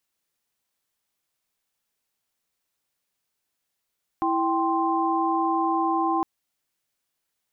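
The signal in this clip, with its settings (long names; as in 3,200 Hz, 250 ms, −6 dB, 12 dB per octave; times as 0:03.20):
held notes E4/G5/C6 sine, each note −25 dBFS 2.01 s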